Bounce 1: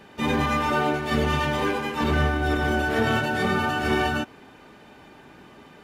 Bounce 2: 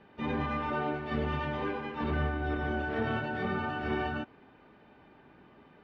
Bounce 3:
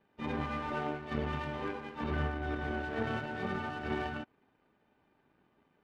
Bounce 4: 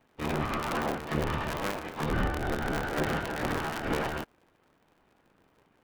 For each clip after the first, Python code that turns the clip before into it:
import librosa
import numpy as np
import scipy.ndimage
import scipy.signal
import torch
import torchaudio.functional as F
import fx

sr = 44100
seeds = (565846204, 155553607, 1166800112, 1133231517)

y1 = fx.air_absorb(x, sr, metres=310.0)
y1 = y1 * librosa.db_to_amplitude(-8.0)
y2 = fx.power_curve(y1, sr, exponent=1.4)
y3 = fx.cycle_switch(y2, sr, every=3, mode='inverted')
y3 = y3 * librosa.db_to_amplitude(5.0)